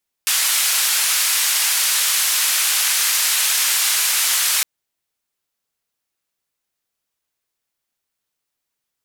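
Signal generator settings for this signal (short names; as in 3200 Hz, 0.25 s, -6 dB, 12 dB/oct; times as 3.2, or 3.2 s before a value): noise band 1400–13000 Hz, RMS -18 dBFS 4.36 s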